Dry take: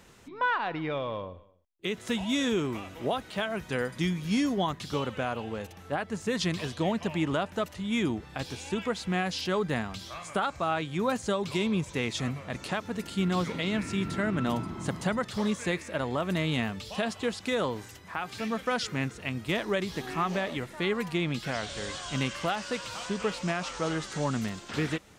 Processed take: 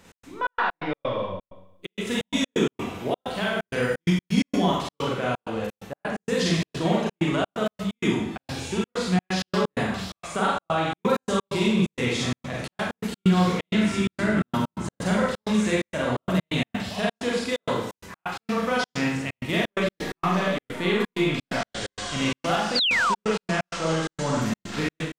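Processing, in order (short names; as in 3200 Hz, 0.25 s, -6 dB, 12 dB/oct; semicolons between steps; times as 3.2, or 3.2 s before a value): Schroeder reverb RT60 0.74 s, combs from 33 ms, DRR -5 dB; step gate "x.xx.x.x.xxx.xx" 129 bpm -60 dB; painted sound fall, 22.75–23.15, 870–5000 Hz -22 dBFS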